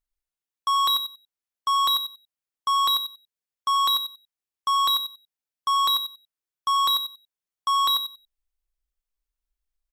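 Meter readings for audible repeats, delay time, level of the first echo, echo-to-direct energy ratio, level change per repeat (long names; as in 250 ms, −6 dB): 2, 92 ms, −8.0 dB, −8.0 dB, −15.5 dB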